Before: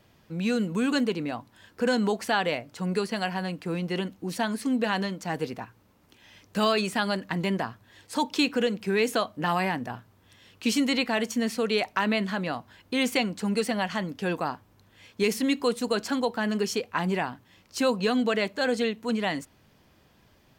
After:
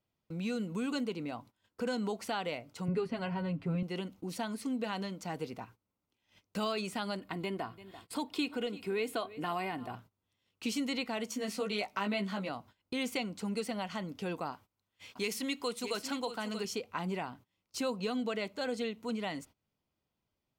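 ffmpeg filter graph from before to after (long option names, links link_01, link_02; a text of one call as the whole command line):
ffmpeg -i in.wav -filter_complex "[0:a]asettb=1/sr,asplit=3[link_01][link_02][link_03];[link_01]atrim=end=2.884[link_04];[link_02]atrim=start=2.88:end=3.83,asetpts=PTS-STARTPTS,afade=type=in:duration=0.004:curve=qsin,afade=type=out:start_time=0.946:duration=0.004:curve=qsin,bass=frequency=250:gain=11,treble=frequency=4000:gain=-15,aecho=1:1:7.4:0.81,atrim=end_sample=41895[link_05];[link_03]atrim=start=3.826[link_06];[link_04][link_05]acrossfade=duration=0.004:curve1=hsin:curve2=qsin[link_07];[link_07][link_06]acrossfade=duration=0.004:curve1=qsin:curve2=hsin,asettb=1/sr,asplit=3[link_08][link_09][link_10];[link_08]atrim=end=7.194[link_11];[link_09]atrim=start=7.19:end=9.95,asetpts=PTS-STARTPTS,afade=type=in:duration=0.004:curve=qsin,afade=type=out:start_time=2.756:duration=0.004:curve=qsin,equalizer=frequency=6100:width_type=o:width=0.36:gain=-12.5,aecho=1:1:2.8:0.39,atrim=end_sample=121716,aecho=1:1:339|678:0.1|0.018,atrim=end_sample=121716[link_12];[link_10]atrim=start=9.946[link_13];[link_11][link_12]acrossfade=duration=0.004:curve1=hsin:curve2=qsin[link_14];[link_14][link_13]acrossfade=duration=0.004:curve1=qsin:curve2=hsin,asettb=1/sr,asplit=3[link_15][link_16][link_17];[link_15]atrim=end=11.294[link_18];[link_16]atrim=start=11.29:end=12.49,asetpts=PTS-STARTPTS,afade=type=in:duration=0.004:curve=qsin,afade=type=out:start_time=1.196:duration=0.004:curve=qsin,lowshelf=frequency=61:gain=-12,asplit=2[link_19][link_20];[link_20]adelay=15,volume=-2dB[link_21];[link_19][link_21]amix=inputs=2:normalize=0,atrim=end_sample=52920[link_22];[link_17]atrim=start=12.486[link_23];[link_18][link_22]acrossfade=duration=0.004:curve1=hsin:curve2=qsin[link_24];[link_24][link_23]acrossfade=duration=0.004:curve1=qsin:curve2=hsin,asettb=1/sr,asplit=3[link_25][link_26][link_27];[link_25]atrim=end=14.524[link_28];[link_26]atrim=start=14.52:end=16.65,asetpts=PTS-STARTPTS,afade=type=in:duration=0.004:curve=qsin,afade=type=out:start_time=2.126:duration=0.004:curve=qsin,tiltshelf=frequency=750:gain=-4,aecho=1:1:631:0.299,atrim=end_sample=93933[link_29];[link_27]atrim=start=16.646[link_30];[link_28][link_29]acrossfade=duration=0.004:curve1=hsin:curve2=qsin[link_31];[link_31][link_30]acrossfade=duration=0.004:curve1=qsin:curve2=hsin,bandreject=frequency=1700:width=6.2,acompressor=threshold=-43dB:ratio=1.5,agate=range=-23dB:threshold=-51dB:ratio=16:detection=peak,volume=-2dB" out.wav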